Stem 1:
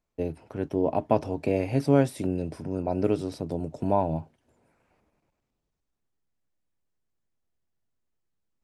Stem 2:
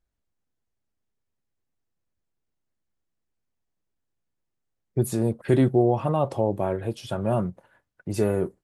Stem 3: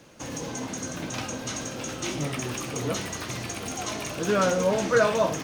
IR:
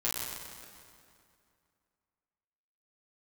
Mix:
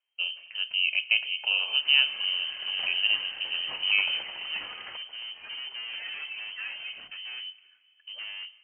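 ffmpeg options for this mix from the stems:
-filter_complex "[0:a]bandreject=f=329.6:t=h:w=4,bandreject=f=659.2:t=h:w=4,bandreject=f=988.8:t=h:w=4,bandreject=f=1.3184k:t=h:w=4,bandreject=f=1.648k:t=h:w=4,bandreject=f=1.9776k:t=h:w=4,bandreject=f=2.3072k:t=h:w=4,bandreject=f=2.6368k:t=h:w=4,bandreject=f=2.9664k:t=h:w=4,bandreject=f=3.296k:t=h:w=4,bandreject=f=3.6256k:t=h:w=4,bandreject=f=3.9552k:t=h:w=4,bandreject=f=4.2848k:t=h:w=4,bandreject=f=4.6144k:t=h:w=4,bandreject=f=4.944k:t=h:w=4,bandreject=f=5.2736k:t=h:w=4,bandreject=f=5.6032k:t=h:w=4,bandreject=f=5.9328k:t=h:w=4,bandreject=f=6.2624k:t=h:w=4,bandreject=f=6.592k:t=h:w=4,bandreject=f=6.9216k:t=h:w=4,bandreject=f=7.2512k:t=h:w=4,bandreject=f=7.5808k:t=h:w=4,bandreject=f=7.9104k:t=h:w=4,bandreject=f=8.24k:t=h:w=4,bandreject=f=8.5696k:t=h:w=4,bandreject=f=8.8992k:t=h:w=4,bandreject=f=9.2288k:t=h:w=4,bandreject=f=9.5584k:t=h:w=4,bandreject=f=9.888k:t=h:w=4,bandreject=f=10.2176k:t=h:w=4,bandreject=f=10.5472k:t=h:w=4,bandreject=f=10.8768k:t=h:w=4,bandreject=f=11.2064k:t=h:w=4,bandreject=f=11.536k:t=h:w=4,bandreject=f=11.8656k:t=h:w=4,bandreject=f=12.1952k:t=h:w=4,bandreject=f=12.5248k:t=h:w=4,bandreject=f=12.8544k:t=h:w=4,volume=-2dB,asplit=2[a][b];[b]volume=-21.5dB[c];[1:a]volume=27dB,asoftclip=hard,volume=-27dB,volume=-10dB,asplit=3[d][e][f];[e]volume=-22.5dB[g];[2:a]adelay=1650,volume=-5.5dB[h];[f]apad=whole_len=312485[i];[h][i]sidechaincompress=threshold=-56dB:ratio=4:attack=6.1:release=144[j];[3:a]atrim=start_sample=2205[k];[c][g]amix=inputs=2:normalize=0[l];[l][k]afir=irnorm=-1:irlink=0[m];[a][d][j][m]amix=inputs=4:normalize=0,lowpass=f=2.7k:t=q:w=0.5098,lowpass=f=2.7k:t=q:w=0.6013,lowpass=f=2.7k:t=q:w=0.9,lowpass=f=2.7k:t=q:w=2.563,afreqshift=-3200"

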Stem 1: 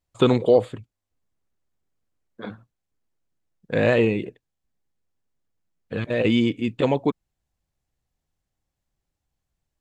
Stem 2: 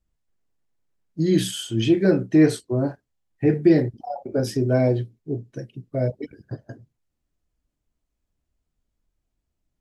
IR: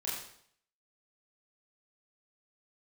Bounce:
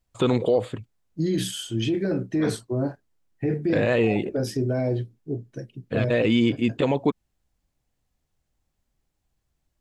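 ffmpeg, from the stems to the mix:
-filter_complex "[0:a]volume=2.5dB[a];[1:a]alimiter=limit=-15dB:level=0:latency=1:release=10,volume=-2dB[b];[a][b]amix=inputs=2:normalize=0,alimiter=limit=-11.5dB:level=0:latency=1:release=82"

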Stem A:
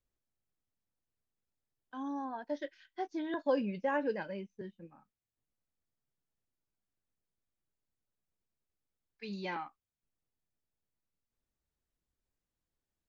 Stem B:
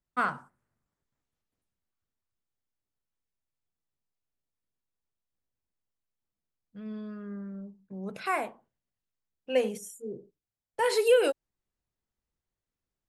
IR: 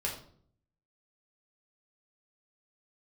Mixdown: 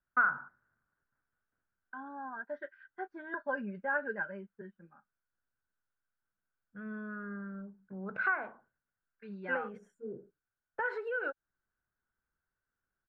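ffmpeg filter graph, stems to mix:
-filter_complex "[0:a]agate=range=-11dB:threshold=-59dB:ratio=16:detection=peak,aecho=1:1:5:0.59,volume=-7.5dB[a];[1:a]acompressor=threshold=-33dB:ratio=10,volume=-3.5dB[b];[a][b]amix=inputs=2:normalize=0,lowpass=f=1.5k:t=q:w=10"

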